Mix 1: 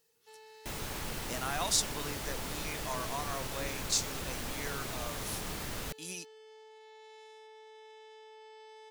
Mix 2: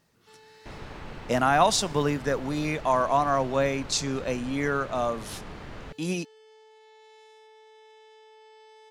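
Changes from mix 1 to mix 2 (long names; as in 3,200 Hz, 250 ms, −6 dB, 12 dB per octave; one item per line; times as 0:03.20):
speech: remove first-order pre-emphasis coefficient 0.9
second sound: add Bessel low-pass filter 2,000 Hz, order 2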